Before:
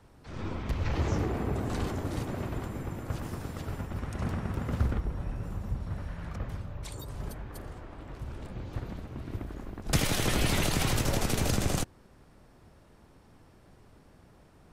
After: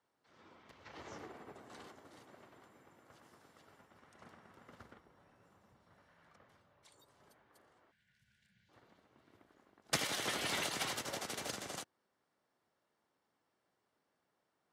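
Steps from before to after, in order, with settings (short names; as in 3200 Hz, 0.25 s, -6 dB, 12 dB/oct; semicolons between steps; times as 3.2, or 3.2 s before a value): notch 2500 Hz, Q 15; spectral gain 7.91–8.69, 230–1400 Hz -25 dB; weighting filter A; soft clip -19 dBFS, distortion -26 dB; upward expander 2.5:1, over -41 dBFS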